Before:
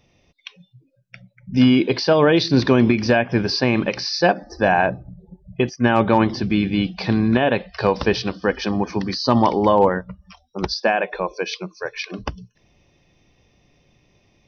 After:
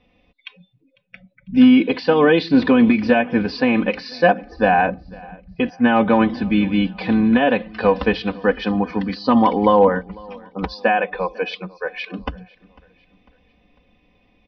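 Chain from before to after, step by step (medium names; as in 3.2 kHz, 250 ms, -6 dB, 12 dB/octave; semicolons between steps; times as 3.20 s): low-pass 3.5 kHz 24 dB/octave; comb 4 ms, depth 80%; feedback delay 499 ms, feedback 46%, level -24 dB; trim -1 dB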